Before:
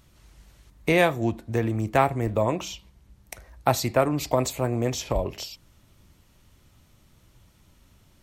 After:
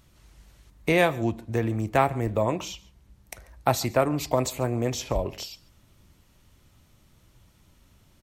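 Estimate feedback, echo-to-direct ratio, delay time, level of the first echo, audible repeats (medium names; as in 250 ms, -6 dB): no regular repeats, -23.0 dB, 140 ms, -23.0 dB, 1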